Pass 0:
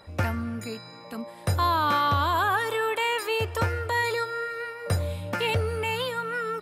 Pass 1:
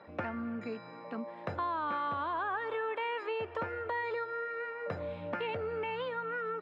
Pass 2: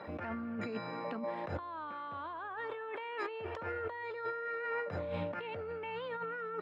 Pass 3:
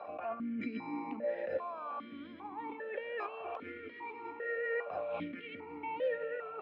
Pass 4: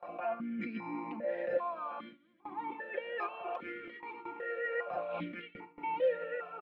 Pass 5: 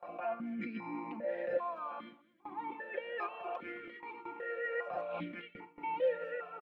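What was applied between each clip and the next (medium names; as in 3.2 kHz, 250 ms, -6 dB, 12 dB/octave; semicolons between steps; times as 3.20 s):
three-band isolator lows -21 dB, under 160 Hz, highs -14 dB, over 2.9 kHz; compression 2.5:1, threshold -35 dBFS, peak gain reduction 10 dB; distance through air 180 m
compressor with a negative ratio -42 dBFS, ratio -1; trim +2 dB
echo that smears into a reverb 903 ms, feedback 54%, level -10.5 dB; stepped vowel filter 2.5 Hz; trim +11 dB
gate with hold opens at -36 dBFS; comb 5.7 ms, depth 73%
speakerphone echo 210 ms, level -23 dB; trim -1.5 dB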